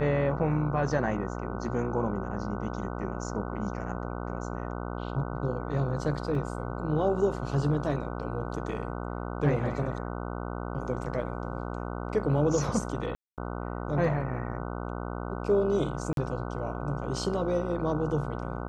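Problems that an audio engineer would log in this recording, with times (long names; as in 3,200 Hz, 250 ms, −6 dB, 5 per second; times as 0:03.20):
mains buzz 60 Hz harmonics 25 −35 dBFS
0:06.35: drop-out 2.3 ms
0:13.15–0:13.38: drop-out 228 ms
0:16.13–0:16.17: drop-out 42 ms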